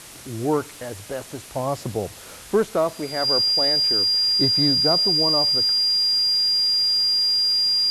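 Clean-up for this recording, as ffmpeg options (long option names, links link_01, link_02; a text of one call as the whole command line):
ffmpeg -i in.wav -af "adeclick=threshold=4,bandreject=frequency=4800:width=30,afwtdn=0.01" out.wav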